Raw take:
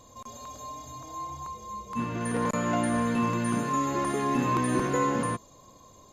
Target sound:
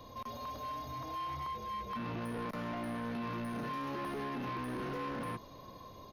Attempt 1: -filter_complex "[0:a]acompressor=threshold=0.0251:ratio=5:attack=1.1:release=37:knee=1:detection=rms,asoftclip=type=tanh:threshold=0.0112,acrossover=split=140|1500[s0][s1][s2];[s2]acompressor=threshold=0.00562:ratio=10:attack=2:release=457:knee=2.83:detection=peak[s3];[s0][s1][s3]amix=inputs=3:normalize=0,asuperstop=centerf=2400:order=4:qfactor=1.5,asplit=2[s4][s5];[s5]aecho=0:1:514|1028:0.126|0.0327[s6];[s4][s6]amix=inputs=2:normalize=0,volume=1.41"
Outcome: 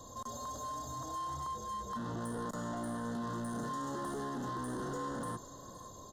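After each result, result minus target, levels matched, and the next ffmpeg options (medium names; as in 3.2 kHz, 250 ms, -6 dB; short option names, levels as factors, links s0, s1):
8 kHz band +13.0 dB; echo-to-direct +7.5 dB
-filter_complex "[0:a]acompressor=threshold=0.0251:ratio=5:attack=1.1:release=37:knee=1:detection=rms,asoftclip=type=tanh:threshold=0.0112,acrossover=split=140|1500[s0][s1][s2];[s2]acompressor=threshold=0.00562:ratio=10:attack=2:release=457:knee=2.83:detection=peak[s3];[s0][s1][s3]amix=inputs=3:normalize=0,asuperstop=centerf=7600:order=4:qfactor=1.5,asplit=2[s4][s5];[s5]aecho=0:1:514|1028:0.126|0.0327[s6];[s4][s6]amix=inputs=2:normalize=0,volume=1.41"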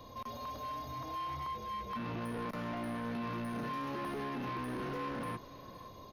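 echo-to-direct +7.5 dB
-filter_complex "[0:a]acompressor=threshold=0.0251:ratio=5:attack=1.1:release=37:knee=1:detection=rms,asoftclip=type=tanh:threshold=0.0112,acrossover=split=140|1500[s0][s1][s2];[s2]acompressor=threshold=0.00562:ratio=10:attack=2:release=457:knee=2.83:detection=peak[s3];[s0][s1][s3]amix=inputs=3:normalize=0,asuperstop=centerf=7600:order=4:qfactor=1.5,asplit=2[s4][s5];[s5]aecho=0:1:514|1028:0.0531|0.0138[s6];[s4][s6]amix=inputs=2:normalize=0,volume=1.41"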